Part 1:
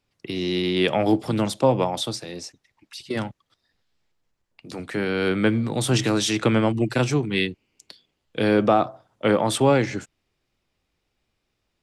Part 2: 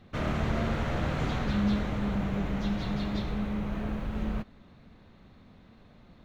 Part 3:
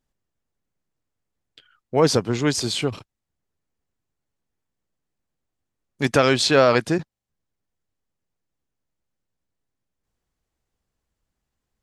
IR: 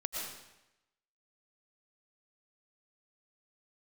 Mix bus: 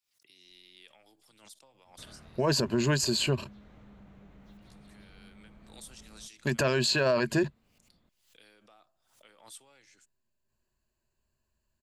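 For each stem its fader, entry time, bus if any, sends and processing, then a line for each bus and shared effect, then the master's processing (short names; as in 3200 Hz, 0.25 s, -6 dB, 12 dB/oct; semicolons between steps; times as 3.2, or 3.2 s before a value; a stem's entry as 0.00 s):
-17.5 dB, 0.00 s, no send, compressor 4:1, threshold -20 dBFS, peak gain reduction 7 dB; pre-emphasis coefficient 0.97; backwards sustainer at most 100 dB/s
-15.0 dB, 1.85 s, no send, compressor 2.5:1, threshold -40 dBFS, peak gain reduction 12 dB
-3.0 dB, 0.45 s, no send, ripple EQ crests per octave 1.4, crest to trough 12 dB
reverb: off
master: limiter -17.5 dBFS, peak gain reduction 11.5 dB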